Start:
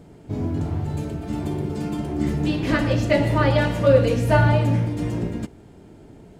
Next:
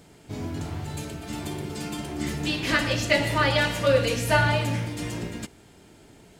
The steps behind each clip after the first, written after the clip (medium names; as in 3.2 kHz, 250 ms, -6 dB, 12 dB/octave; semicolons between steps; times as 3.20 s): tilt shelf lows -8 dB, about 1.2 kHz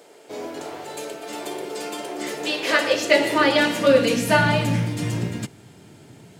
high-pass sweep 480 Hz -> 120 Hz, 2.74–5.12 s; trim +3 dB